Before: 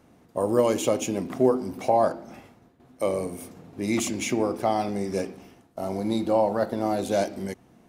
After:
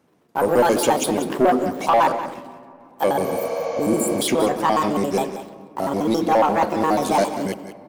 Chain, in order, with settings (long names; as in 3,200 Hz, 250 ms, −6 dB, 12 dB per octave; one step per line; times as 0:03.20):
pitch shifter gated in a rhythm +6.5 semitones, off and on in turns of 69 ms
high-pass filter 120 Hz
leveller curve on the samples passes 2
healed spectral selection 0:03.27–0:04.19, 470–7,100 Hz before
single-tap delay 185 ms −12 dB
on a send at −17 dB: convolution reverb RT60 3.0 s, pre-delay 3 ms